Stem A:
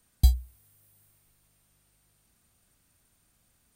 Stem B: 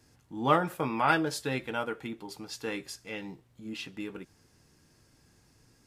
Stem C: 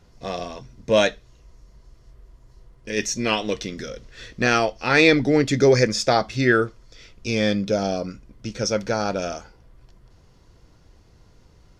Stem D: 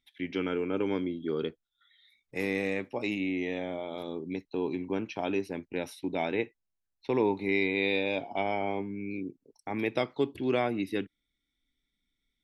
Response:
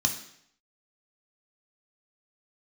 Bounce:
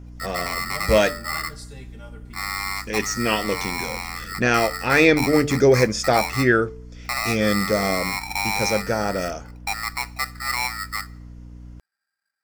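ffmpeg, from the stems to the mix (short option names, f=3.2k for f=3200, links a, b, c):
-filter_complex "[0:a]adelay=650,volume=-7.5dB[a];[1:a]equalizer=f=8.4k:t=o:w=0.64:g=11.5,aecho=1:1:5:0.97,adelay=250,volume=-15dB,asplit=2[b][c];[c]volume=-11.5dB[d];[2:a]equalizer=f=4.1k:w=2.9:g=-9.5,bandreject=f=147.4:t=h:w=4,bandreject=f=294.8:t=h:w=4,bandreject=f=442.2:t=h:w=4,bandreject=f=589.6:t=h:w=4,bandreject=f=737:t=h:w=4,bandreject=f=884.4:t=h:w=4,aeval=exprs='val(0)+0.0112*(sin(2*PI*60*n/s)+sin(2*PI*2*60*n/s)/2+sin(2*PI*3*60*n/s)/3+sin(2*PI*4*60*n/s)/4+sin(2*PI*5*60*n/s)/5)':c=same,volume=0.5dB[e];[3:a]lowpass=f=800:t=q:w=5.4,alimiter=limit=-16dB:level=0:latency=1:release=260,aeval=exprs='val(0)*sgn(sin(2*PI*1600*n/s))':c=same,volume=0.5dB,asplit=2[f][g];[g]volume=-22.5dB[h];[4:a]atrim=start_sample=2205[i];[d][h]amix=inputs=2:normalize=0[j];[j][i]afir=irnorm=-1:irlink=0[k];[a][b][e][f][k]amix=inputs=5:normalize=0"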